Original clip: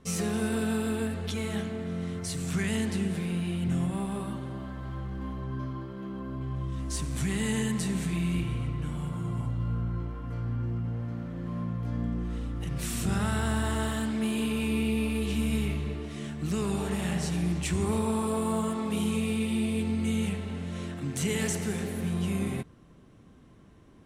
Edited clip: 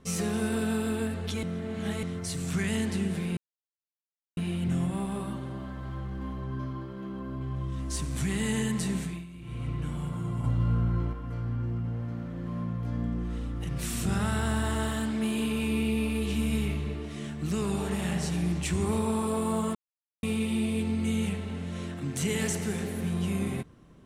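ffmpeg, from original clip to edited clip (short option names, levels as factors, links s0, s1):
-filter_complex "[0:a]asplit=10[s0][s1][s2][s3][s4][s5][s6][s7][s8][s9];[s0]atrim=end=1.432[s10];[s1]atrim=start=1.428:end=2.032,asetpts=PTS-STARTPTS,areverse[s11];[s2]atrim=start=2.028:end=3.37,asetpts=PTS-STARTPTS,afade=t=out:st=1.338:d=0.004:c=hsin,apad=pad_dur=1[s12];[s3]atrim=start=3.37:end=8.26,asetpts=PTS-STARTPTS,afade=t=in:d=0.004:c=hsin,afade=t=out:st=4.57:d=0.32:silence=0.149624[s13];[s4]atrim=start=8.26:end=8.4,asetpts=PTS-STARTPTS,volume=0.15[s14];[s5]atrim=start=8.4:end=9.442,asetpts=PTS-STARTPTS,afade=t=in:d=0.32:silence=0.149624[s15];[s6]atrim=start=9.438:end=10.132,asetpts=PTS-STARTPTS,volume=1.68[s16];[s7]atrim=start=10.128:end=18.75,asetpts=PTS-STARTPTS,afade=t=out:st=8.618:d=0.004:c=hsin[s17];[s8]atrim=start=18.75:end=19.23,asetpts=PTS-STARTPTS,volume=0[s18];[s9]atrim=start=19.23,asetpts=PTS-STARTPTS,afade=t=in:d=0.004:c=hsin[s19];[s10][s11]acrossfade=d=0.004:c1=hsin:c2=hsin[s20];[s12][s13][s14][s15]concat=n=4:v=0:a=1[s21];[s20][s21]acrossfade=d=0.004:c1=hsin:c2=hsin[s22];[s22][s16]acrossfade=d=0.004:c1=hsin:c2=hsin[s23];[s17][s18][s19]concat=n=3:v=0:a=1[s24];[s23][s24]acrossfade=d=0.004:c1=hsin:c2=hsin"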